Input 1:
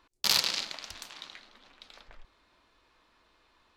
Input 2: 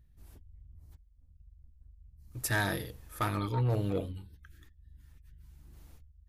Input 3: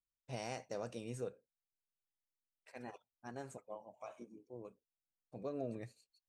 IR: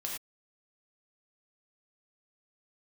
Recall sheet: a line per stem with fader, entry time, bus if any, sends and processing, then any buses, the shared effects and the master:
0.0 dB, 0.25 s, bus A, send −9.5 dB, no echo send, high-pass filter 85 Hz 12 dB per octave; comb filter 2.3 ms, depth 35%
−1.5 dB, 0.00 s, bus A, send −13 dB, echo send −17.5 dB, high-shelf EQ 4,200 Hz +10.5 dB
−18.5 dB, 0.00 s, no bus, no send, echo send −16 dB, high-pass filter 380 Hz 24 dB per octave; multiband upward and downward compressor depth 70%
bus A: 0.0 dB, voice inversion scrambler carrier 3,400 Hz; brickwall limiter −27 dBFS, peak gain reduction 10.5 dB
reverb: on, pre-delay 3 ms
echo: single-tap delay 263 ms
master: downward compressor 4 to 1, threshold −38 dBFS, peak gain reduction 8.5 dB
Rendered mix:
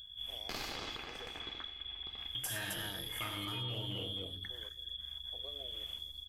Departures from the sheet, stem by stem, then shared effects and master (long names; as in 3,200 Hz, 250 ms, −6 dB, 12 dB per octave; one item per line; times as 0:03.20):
stem 1: send −9.5 dB → −15.5 dB
stem 2 −1.5 dB → +7.5 dB
stem 3 −18.5 dB → −8.5 dB